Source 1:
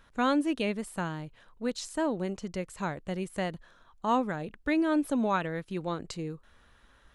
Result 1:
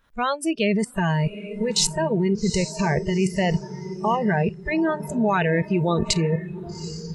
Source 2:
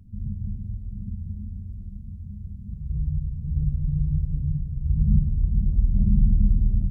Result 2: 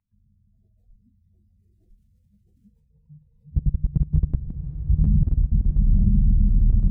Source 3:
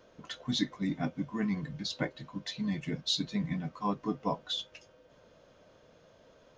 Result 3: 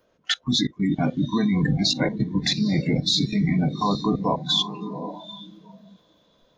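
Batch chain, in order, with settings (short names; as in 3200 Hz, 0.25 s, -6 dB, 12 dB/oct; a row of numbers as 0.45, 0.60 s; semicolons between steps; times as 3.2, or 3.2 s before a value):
level quantiser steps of 22 dB; diffused feedback echo 0.797 s, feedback 44%, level -9 dB; spectral noise reduction 23 dB; match loudness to -23 LUFS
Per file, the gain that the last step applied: +24.5, +6.0, +23.0 dB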